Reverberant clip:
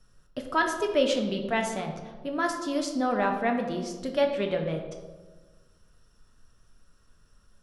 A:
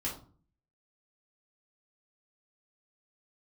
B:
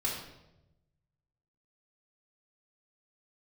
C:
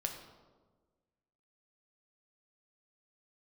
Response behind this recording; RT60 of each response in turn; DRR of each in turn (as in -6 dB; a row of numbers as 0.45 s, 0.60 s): C; 0.45 s, 0.95 s, 1.4 s; -5.5 dB, -5.5 dB, 3.0 dB